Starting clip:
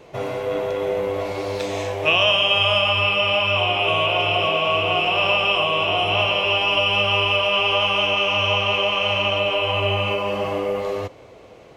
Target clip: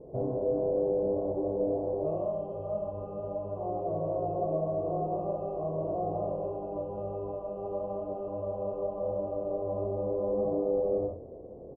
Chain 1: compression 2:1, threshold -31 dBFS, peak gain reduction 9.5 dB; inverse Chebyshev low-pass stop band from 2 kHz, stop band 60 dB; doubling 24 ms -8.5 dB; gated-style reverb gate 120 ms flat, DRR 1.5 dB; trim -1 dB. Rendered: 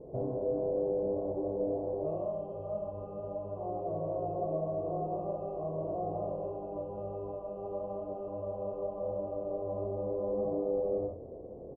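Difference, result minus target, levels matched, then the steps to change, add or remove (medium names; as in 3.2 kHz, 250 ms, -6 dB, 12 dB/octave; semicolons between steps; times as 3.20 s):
compression: peak gain reduction +3.5 dB
change: compression 2:1, threshold -24.5 dBFS, peak gain reduction 6.5 dB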